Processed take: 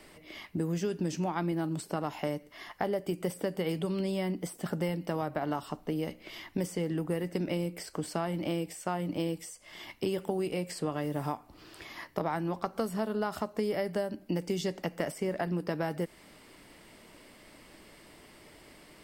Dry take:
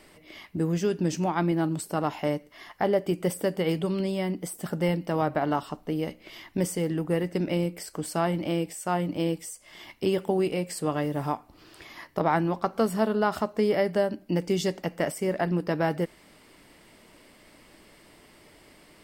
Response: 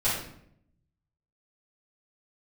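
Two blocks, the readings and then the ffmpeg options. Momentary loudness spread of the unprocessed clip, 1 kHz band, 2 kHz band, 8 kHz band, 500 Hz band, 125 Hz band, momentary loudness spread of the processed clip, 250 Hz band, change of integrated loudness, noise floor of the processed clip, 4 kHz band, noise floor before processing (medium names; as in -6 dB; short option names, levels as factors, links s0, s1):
10 LU, -7.0 dB, -6.0 dB, -6.0 dB, -6.5 dB, -5.0 dB, 21 LU, -5.5 dB, -6.0 dB, -56 dBFS, -4.0 dB, -56 dBFS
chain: -filter_complex "[0:a]acrossover=split=100|5900[s0][s1][s2];[s0]acompressor=threshold=0.00224:ratio=4[s3];[s1]acompressor=threshold=0.0355:ratio=4[s4];[s2]acompressor=threshold=0.00355:ratio=4[s5];[s3][s4][s5]amix=inputs=3:normalize=0"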